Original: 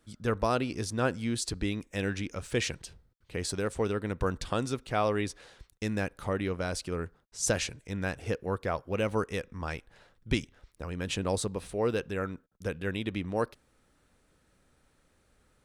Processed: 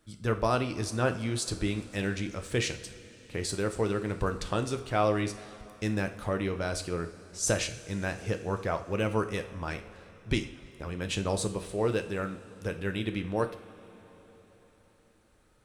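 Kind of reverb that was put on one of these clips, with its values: two-slope reverb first 0.44 s, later 4.6 s, from -18 dB, DRR 6.5 dB

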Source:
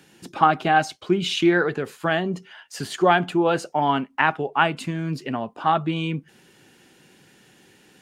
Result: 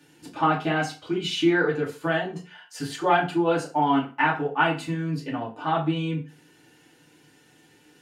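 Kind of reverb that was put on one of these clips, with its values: FDN reverb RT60 0.35 s, low-frequency decay 0.95×, high-frequency decay 0.8×, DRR -4.5 dB; gain -8.5 dB

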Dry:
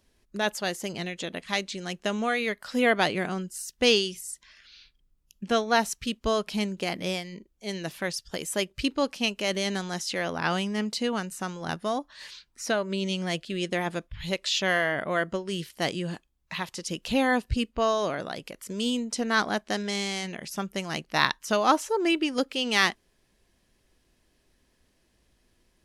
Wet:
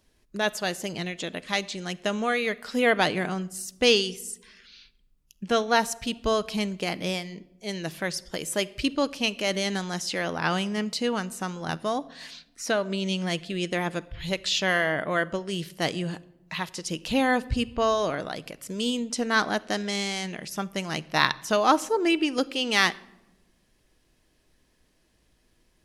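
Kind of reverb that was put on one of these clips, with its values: shoebox room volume 3800 m³, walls furnished, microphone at 0.51 m; gain +1 dB

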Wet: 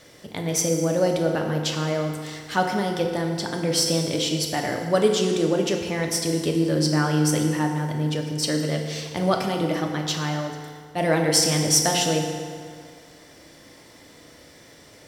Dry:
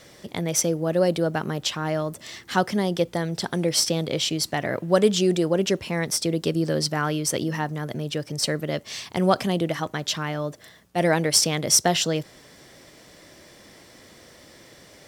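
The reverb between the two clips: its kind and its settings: FDN reverb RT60 2.1 s, low-frequency decay 0.85×, high-frequency decay 0.7×, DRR 1.5 dB; gain -2 dB

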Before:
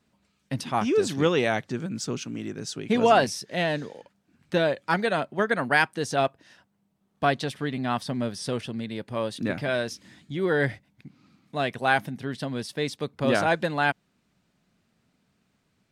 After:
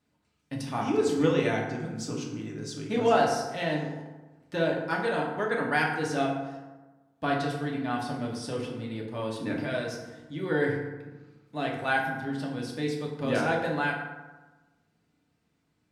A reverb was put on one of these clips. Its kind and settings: FDN reverb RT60 1.2 s, low-frequency decay 1.1×, high-frequency decay 0.5×, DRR -2 dB; gain -8 dB

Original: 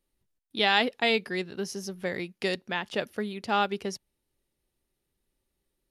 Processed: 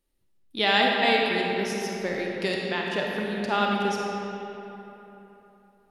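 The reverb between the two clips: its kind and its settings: digital reverb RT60 3.5 s, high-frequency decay 0.6×, pre-delay 5 ms, DRR -1.5 dB

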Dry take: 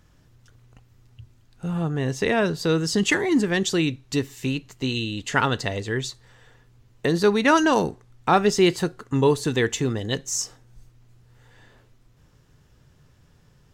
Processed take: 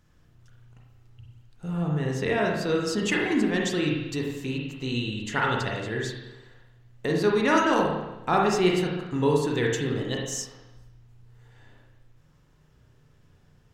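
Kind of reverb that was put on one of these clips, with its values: spring tank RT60 1 s, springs 33/46 ms, chirp 40 ms, DRR -1.5 dB; gain -6.5 dB

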